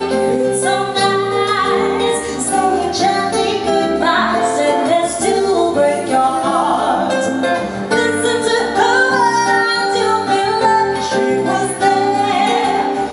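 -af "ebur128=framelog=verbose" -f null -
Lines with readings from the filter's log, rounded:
Integrated loudness:
  I:         -14.7 LUFS
  Threshold: -24.7 LUFS
Loudness range:
  LRA:         1.5 LU
  Threshold: -34.7 LUFS
  LRA low:   -15.3 LUFS
  LRA high:  -13.8 LUFS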